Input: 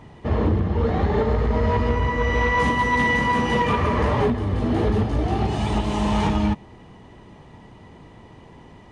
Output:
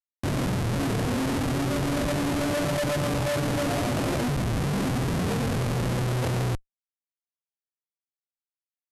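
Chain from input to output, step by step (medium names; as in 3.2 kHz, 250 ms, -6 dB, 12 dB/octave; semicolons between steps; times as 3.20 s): Chebyshev band-pass 170–1300 Hz, order 3; Schmitt trigger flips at -31.5 dBFS; pitch shift -9 st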